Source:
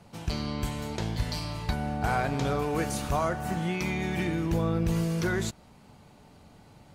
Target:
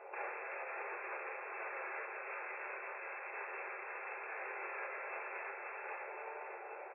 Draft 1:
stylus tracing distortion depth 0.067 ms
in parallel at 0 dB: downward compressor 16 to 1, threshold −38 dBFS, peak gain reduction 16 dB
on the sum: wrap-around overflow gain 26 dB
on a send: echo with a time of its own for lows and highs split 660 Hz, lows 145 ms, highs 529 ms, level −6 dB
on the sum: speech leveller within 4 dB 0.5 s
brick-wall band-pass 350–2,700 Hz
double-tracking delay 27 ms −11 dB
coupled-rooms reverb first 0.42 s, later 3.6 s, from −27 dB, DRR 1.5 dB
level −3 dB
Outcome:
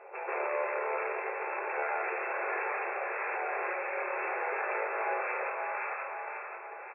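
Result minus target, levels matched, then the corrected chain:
wrap-around overflow: distortion −24 dB
stylus tracing distortion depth 0.067 ms
in parallel at 0 dB: downward compressor 16 to 1, threshold −38 dBFS, peak gain reduction 16 dB
on the sum: wrap-around overflow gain 34.5 dB
on a send: echo with a time of its own for lows and highs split 660 Hz, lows 145 ms, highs 529 ms, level −6 dB
on the sum: speech leveller within 4 dB 0.5 s
brick-wall band-pass 350–2,700 Hz
double-tracking delay 27 ms −11 dB
coupled-rooms reverb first 0.42 s, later 3.6 s, from −27 dB, DRR 1.5 dB
level −3 dB

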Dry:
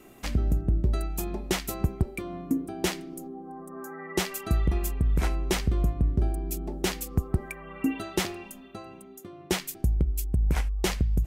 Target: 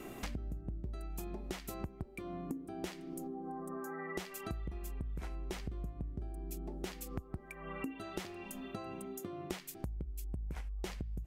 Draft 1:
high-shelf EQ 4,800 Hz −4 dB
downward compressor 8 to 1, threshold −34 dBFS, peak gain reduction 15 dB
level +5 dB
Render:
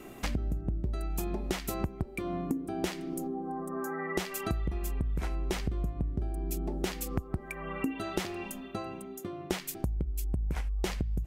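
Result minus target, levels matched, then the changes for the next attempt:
downward compressor: peak gain reduction −9 dB
change: downward compressor 8 to 1, threshold −44.5 dBFS, peak gain reduction 24.5 dB

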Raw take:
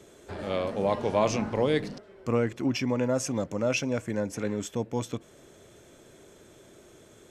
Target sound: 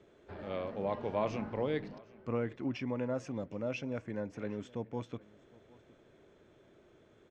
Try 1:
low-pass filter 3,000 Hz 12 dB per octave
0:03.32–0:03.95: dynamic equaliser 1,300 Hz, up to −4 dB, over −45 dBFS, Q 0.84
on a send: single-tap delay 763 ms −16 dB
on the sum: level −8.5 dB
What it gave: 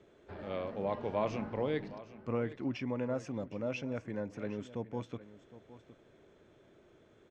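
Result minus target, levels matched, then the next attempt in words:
echo-to-direct +7 dB
low-pass filter 3,000 Hz 12 dB per octave
0:03.32–0:03.95: dynamic equaliser 1,300 Hz, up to −4 dB, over −45 dBFS, Q 0.84
on a send: single-tap delay 763 ms −23 dB
on the sum: level −8.5 dB

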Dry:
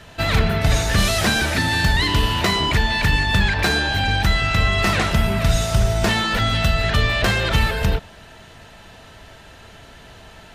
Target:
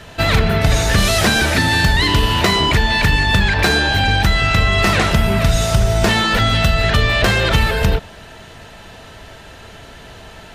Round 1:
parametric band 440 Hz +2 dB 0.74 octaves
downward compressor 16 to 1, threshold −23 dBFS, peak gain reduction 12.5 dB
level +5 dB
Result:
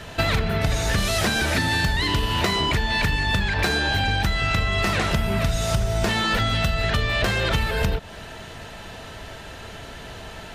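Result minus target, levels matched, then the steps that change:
downward compressor: peak gain reduction +9 dB
change: downward compressor 16 to 1, threshold −13.5 dBFS, peak gain reduction 3.5 dB

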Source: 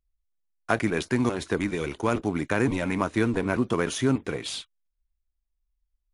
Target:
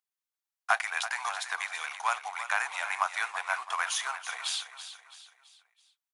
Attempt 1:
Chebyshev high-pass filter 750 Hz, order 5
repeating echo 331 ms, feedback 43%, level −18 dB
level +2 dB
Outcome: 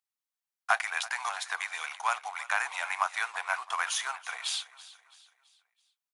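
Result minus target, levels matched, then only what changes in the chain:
echo-to-direct −6.5 dB
change: repeating echo 331 ms, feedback 43%, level −11.5 dB

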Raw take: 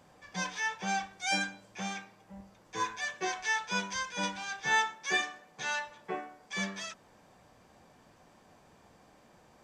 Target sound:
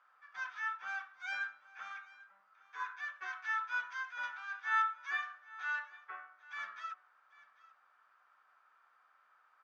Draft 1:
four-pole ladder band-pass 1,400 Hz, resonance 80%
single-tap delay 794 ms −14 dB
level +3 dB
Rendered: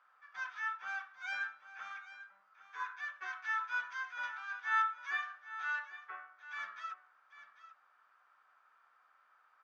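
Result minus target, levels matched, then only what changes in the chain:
echo-to-direct +6 dB
change: single-tap delay 794 ms −20 dB

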